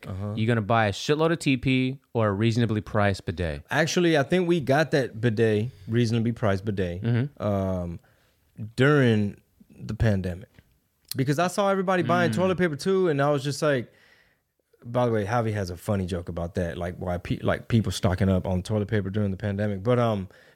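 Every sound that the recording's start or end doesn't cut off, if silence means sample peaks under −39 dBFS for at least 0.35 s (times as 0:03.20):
0:08.59–0:09.35
0:09.79–0:10.59
0:11.09–0:13.84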